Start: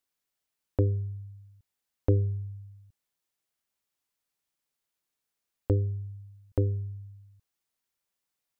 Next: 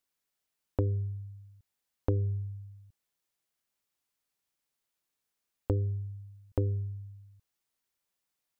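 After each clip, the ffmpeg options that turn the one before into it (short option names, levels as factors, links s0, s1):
-af "acompressor=threshold=0.0562:ratio=4"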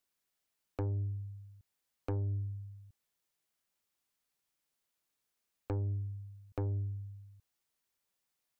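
-filter_complex "[0:a]acrossover=split=210[s0][s1];[s0]alimiter=level_in=1.68:limit=0.0631:level=0:latency=1,volume=0.596[s2];[s2][s1]amix=inputs=2:normalize=0,asoftclip=type=tanh:threshold=0.0335"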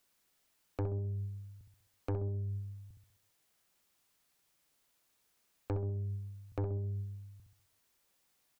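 -filter_complex "[0:a]alimiter=level_in=5.31:limit=0.0631:level=0:latency=1,volume=0.188,asplit=2[s0][s1];[s1]adelay=65,lowpass=f=830:p=1,volume=0.562,asplit=2[s2][s3];[s3]adelay=65,lowpass=f=830:p=1,volume=0.49,asplit=2[s4][s5];[s5]adelay=65,lowpass=f=830:p=1,volume=0.49,asplit=2[s6][s7];[s7]adelay=65,lowpass=f=830:p=1,volume=0.49,asplit=2[s8][s9];[s9]adelay=65,lowpass=f=830:p=1,volume=0.49,asplit=2[s10][s11];[s11]adelay=65,lowpass=f=830:p=1,volume=0.49[s12];[s2][s4][s6][s8][s10][s12]amix=inputs=6:normalize=0[s13];[s0][s13]amix=inputs=2:normalize=0,volume=2.82"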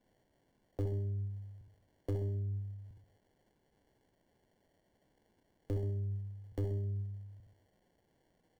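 -filter_complex "[0:a]acrossover=split=230|800[s0][s1][s2];[s2]acrusher=samples=35:mix=1:aa=0.000001[s3];[s0][s1][s3]amix=inputs=3:normalize=0,asoftclip=type=tanh:threshold=0.0473,volume=1.12"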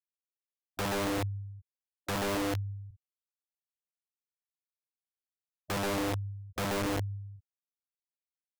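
-af "afftfilt=real='re*gte(hypot(re,im),0.02)':imag='im*gte(hypot(re,im),0.02)':win_size=1024:overlap=0.75,aeval=exprs='(mod(47.3*val(0)+1,2)-1)/47.3':c=same,volume=1.88"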